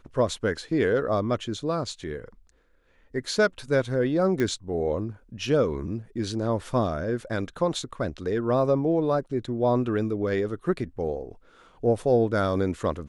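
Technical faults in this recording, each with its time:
4.4 pop -15 dBFS

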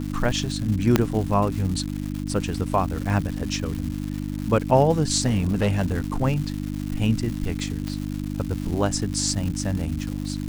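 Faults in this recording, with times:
crackle 350/s -30 dBFS
hum 50 Hz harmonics 6 -29 dBFS
0.96 pop -3 dBFS
5.26–6 clipped -17 dBFS
7.88 pop -17 dBFS

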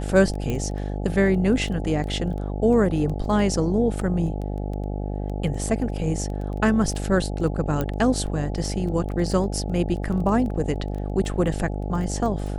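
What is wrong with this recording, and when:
buzz 50 Hz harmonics 17 -28 dBFS
crackle 11/s -29 dBFS
0.5 pop -15 dBFS
4.01 gap 2.9 ms
7.81 pop -12 dBFS

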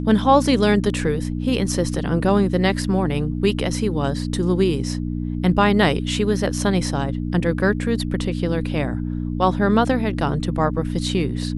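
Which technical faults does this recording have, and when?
hum 60 Hz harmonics 5 -25 dBFS

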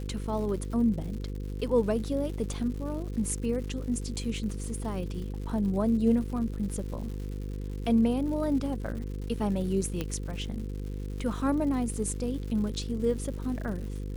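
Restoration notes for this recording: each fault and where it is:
buzz 50 Hz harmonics 10 -35 dBFS
crackle 200/s -39 dBFS
10.01 pop -17 dBFS

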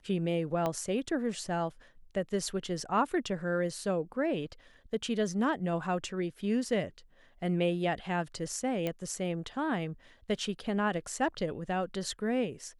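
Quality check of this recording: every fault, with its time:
0.66 pop -18 dBFS
8.87 pop -19 dBFS

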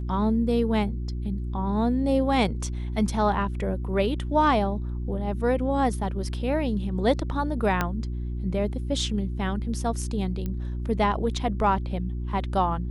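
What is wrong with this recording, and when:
hum 60 Hz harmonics 6 -30 dBFS
7.81 pop -10 dBFS
10.46 pop -19 dBFS

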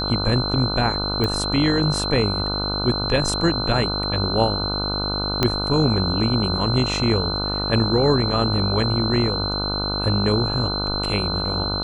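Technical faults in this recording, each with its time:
buzz 50 Hz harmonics 30 -27 dBFS
tone 4100 Hz -25 dBFS
1.24 pop -10 dBFS
5.43 pop -4 dBFS

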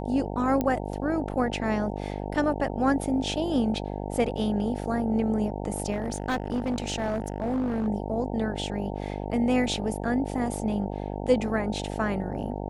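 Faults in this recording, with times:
buzz 50 Hz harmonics 18 -33 dBFS
0.61 pop -14 dBFS
5.91–7.88 clipped -23 dBFS

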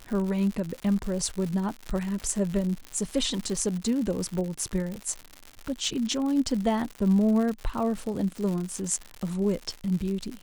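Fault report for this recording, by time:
crackle 140/s -31 dBFS

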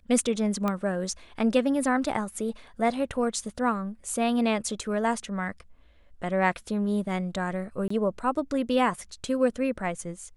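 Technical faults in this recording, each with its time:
0.68 pop -15 dBFS
7.88–7.9 gap 24 ms

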